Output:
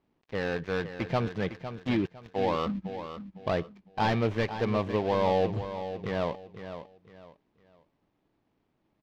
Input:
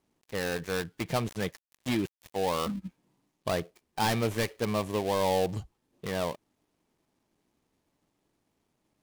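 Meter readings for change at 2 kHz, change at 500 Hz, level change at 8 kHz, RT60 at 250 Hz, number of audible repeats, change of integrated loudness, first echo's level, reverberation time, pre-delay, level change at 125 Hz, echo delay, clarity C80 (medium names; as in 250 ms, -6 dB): +0.5 dB, +2.0 dB, under -15 dB, no reverb, 3, +1.0 dB, -10.5 dB, no reverb, no reverb, +2.5 dB, 506 ms, no reverb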